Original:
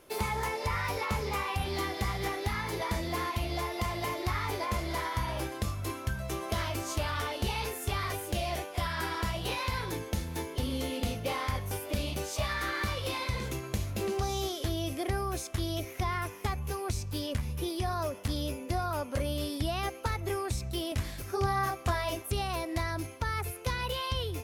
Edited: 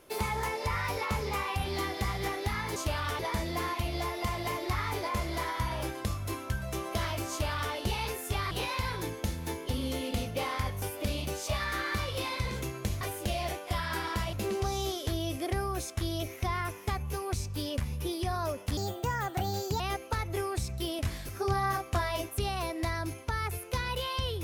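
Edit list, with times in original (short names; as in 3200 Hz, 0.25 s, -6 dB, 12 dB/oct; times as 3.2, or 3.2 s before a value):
6.87–7.3 copy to 2.76
8.08–9.4 move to 13.9
18.34–19.73 speed 135%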